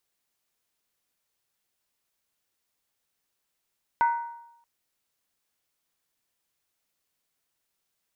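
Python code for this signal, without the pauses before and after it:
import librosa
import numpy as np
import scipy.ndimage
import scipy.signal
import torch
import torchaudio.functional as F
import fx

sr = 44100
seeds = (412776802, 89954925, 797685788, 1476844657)

y = fx.strike_skin(sr, length_s=0.63, level_db=-17, hz=937.0, decay_s=0.84, tilt_db=10.0, modes=5)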